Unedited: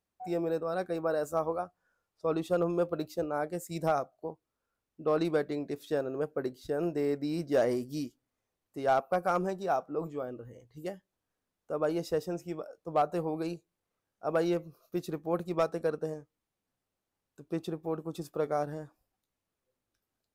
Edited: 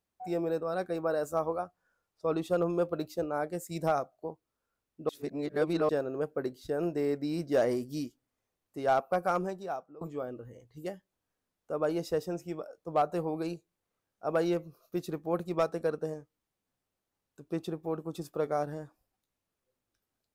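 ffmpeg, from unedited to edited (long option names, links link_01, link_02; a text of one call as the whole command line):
ffmpeg -i in.wav -filter_complex "[0:a]asplit=4[link_01][link_02][link_03][link_04];[link_01]atrim=end=5.092[link_05];[link_02]atrim=start=5.088:end=5.892,asetpts=PTS-STARTPTS,areverse[link_06];[link_03]atrim=start=5.888:end=10.01,asetpts=PTS-STARTPTS,afade=type=out:start_time=3.402:duration=0.72:silence=0.1[link_07];[link_04]atrim=start=10.01,asetpts=PTS-STARTPTS,afade=type=in:duration=0.004:curve=hsin:silence=0.1[link_08];[link_05][link_06]acrossfade=duration=0.004:curve1=hsin:curve2=hsin[link_09];[link_07][link_08]concat=n=2:v=0:a=1[link_10];[link_09][link_10]acrossfade=duration=0.004:curve1=hsin:curve2=hsin" out.wav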